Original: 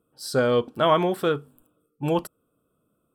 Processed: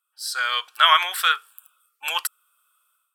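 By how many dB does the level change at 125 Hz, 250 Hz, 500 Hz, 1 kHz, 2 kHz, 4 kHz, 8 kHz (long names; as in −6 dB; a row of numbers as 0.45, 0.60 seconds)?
below −40 dB, below −35 dB, −17.5 dB, +5.0 dB, +11.0 dB, +13.5 dB, +9.5 dB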